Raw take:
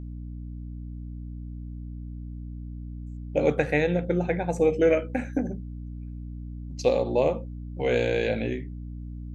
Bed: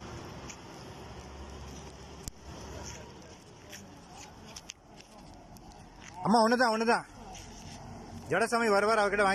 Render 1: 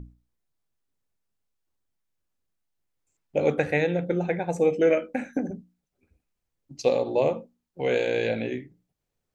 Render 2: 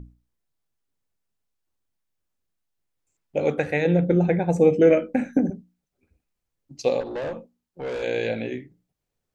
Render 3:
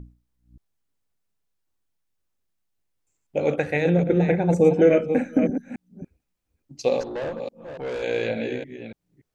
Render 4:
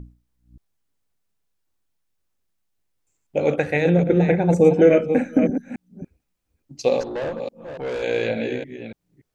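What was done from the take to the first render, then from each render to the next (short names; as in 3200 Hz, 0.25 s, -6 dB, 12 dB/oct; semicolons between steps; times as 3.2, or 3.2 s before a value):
notches 60/120/180/240/300 Hz
3.85–5.5 low shelf 390 Hz +11 dB; 7–8.03 tube stage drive 26 dB, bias 0.3
reverse delay 0.288 s, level -7.5 dB
gain +2.5 dB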